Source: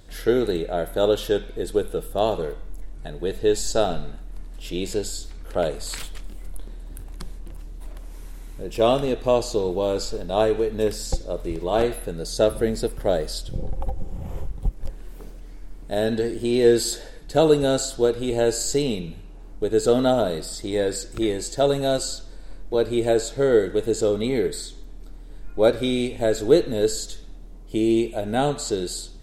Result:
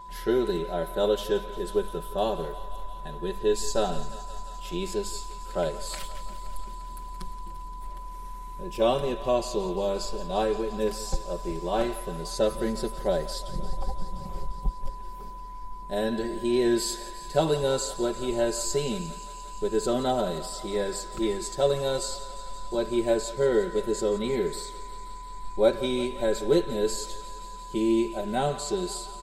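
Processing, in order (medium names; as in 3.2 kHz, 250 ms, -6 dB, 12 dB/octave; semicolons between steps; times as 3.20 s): comb 5.3 ms, depth 85%; whistle 1 kHz -34 dBFS; thinning echo 174 ms, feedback 84%, high-pass 470 Hz, level -15 dB; trim -7 dB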